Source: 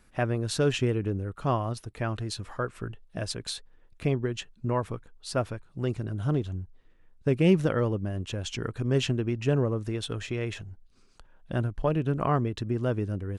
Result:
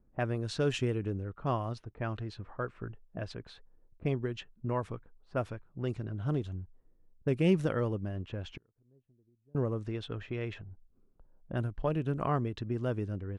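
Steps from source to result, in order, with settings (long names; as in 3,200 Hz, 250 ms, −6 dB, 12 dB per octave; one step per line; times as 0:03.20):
0:08.57–0:09.55: gate with flip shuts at −32 dBFS, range −35 dB
low-pass that shuts in the quiet parts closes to 480 Hz, open at −23 dBFS
level −5 dB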